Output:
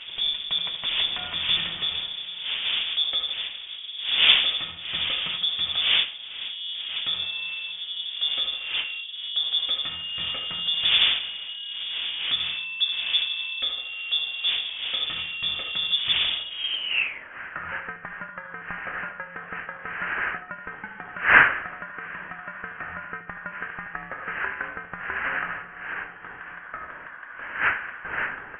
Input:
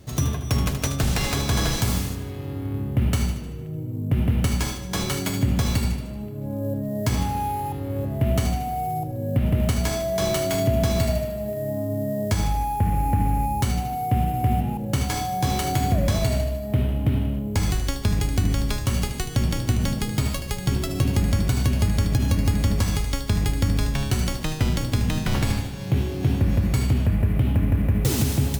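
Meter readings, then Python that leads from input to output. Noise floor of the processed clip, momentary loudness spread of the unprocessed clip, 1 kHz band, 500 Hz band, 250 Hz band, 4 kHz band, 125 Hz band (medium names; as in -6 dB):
-42 dBFS, 6 LU, -5.5 dB, -15.0 dB, -23.0 dB, +12.0 dB, -29.5 dB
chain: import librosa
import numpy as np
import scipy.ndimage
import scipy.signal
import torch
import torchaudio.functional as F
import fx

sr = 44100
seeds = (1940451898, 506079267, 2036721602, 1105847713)

p1 = fx.dmg_wind(x, sr, seeds[0], corner_hz=640.0, level_db=-20.0)
p2 = fx.low_shelf(p1, sr, hz=390.0, db=-8.5)
p3 = 10.0 ** (-2.5 / 20.0) * (np.abs((p2 / 10.0 ** (-2.5 / 20.0) + 3.0) % 4.0 - 2.0) - 1.0)
p4 = p2 + (p3 * 10.0 ** (-8.5 / 20.0))
p5 = fx.filter_sweep_highpass(p4, sr, from_hz=82.0, to_hz=1900.0, start_s=16.26, end_s=17.27, q=5.6)
p6 = fx.freq_invert(p5, sr, carrier_hz=3500)
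y = p6 * 10.0 ** (-8.5 / 20.0)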